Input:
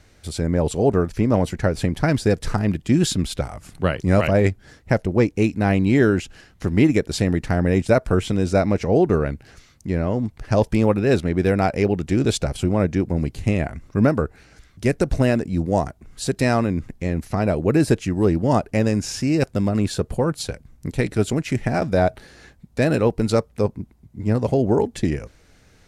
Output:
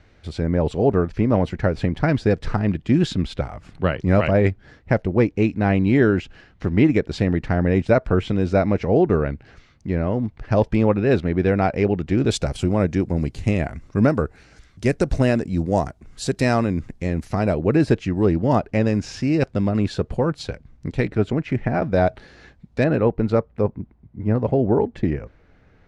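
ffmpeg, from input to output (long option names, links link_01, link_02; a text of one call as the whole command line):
ffmpeg -i in.wav -af "asetnsamples=nb_out_samples=441:pad=0,asendcmd='12.31 lowpass f 8100;17.54 lowpass f 4100;21.05 lowpass f 2300;21.94 lowpass f 4400;22.84 lowpass f 2000',lowpass=3400" out.wav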